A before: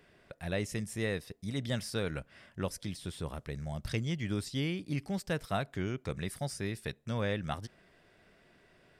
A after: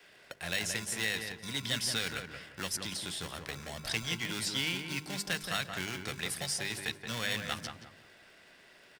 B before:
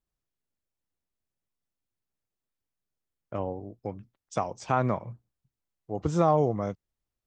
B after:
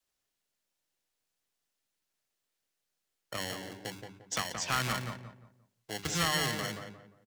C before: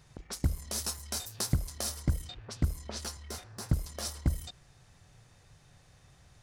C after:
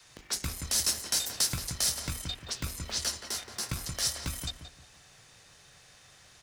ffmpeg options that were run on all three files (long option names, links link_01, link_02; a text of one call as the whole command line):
ffmpeg -i in.wav -filter_complex "[0:a]bandreject=frequency=50:width_type=h:width=6,bandreject=frequency=100:width_type=h:width=6,bandreject=frequency=150:width_type=h:width=6,bandreject=frequency=200:width_type=h:width=6,bandreject=frequency=250:width_type=h:width=6,bandreject=frequency=300:width_type=h:width=6,bandreject=frequency=350:width_type=h:width=6,bandreject=frequency=400:width_type=h:width=6,asplit=2[link_01][link_02];[link_02]acrusher=samples=36:mix=1:aa=0.000001,volume=-6dB[link_03];[link_01][link_03]amix=inputs=2:normalize=0,adynamicequalizer=threshold=0.00891:dfrequency=100:dqfactor=0.95:tfrequency=100:tqfactor=0.95:attack=5:release=100:ratio=0.375:range=2:mode=cutabove:tftype=bell,acrossover=split=240|1300[link_04][link_05][link_06];[link_05]acompressor=threshold=-43dB:ratio=6[link_07];[link_04][link_07][link_06]amix=inputs=3:normalize=0,asplit=2[link_08][link_09];[link_09]highpass=frequency=720:poles=1,volume=15dB,asoftclip=type=tanh:threshold=-13dB[link_10];[link_08][link_10]amix=inputs=2:normalize=0,lowpass=frequency=5400:poles=1,volume=-6dB,highshelf=frequency=2300:gain=11,asplit=2[link_11][link_12];[link_12]adelay=175,lowpass=frequency=1500:poles=1,volume=-4.5dB,asplit=2[link_13][link_14];[link_14]adelay=175,lowpass=frequency=1500:poles=1,volume=0.34,asplit=2[link_15][link_16];[link_16]adelay=175,lowpass=frequency=1500:poles=1,volume=0.34,asplit=2[link_17][link_18];[link_18]adelay=175,lowpass=frequency=1500:poles=1,volume=0.34[link_19];[link_11][link_13][link_15][link_17][link_19]amix=inputs=5:normalize=0,volume=-7dB" out.wav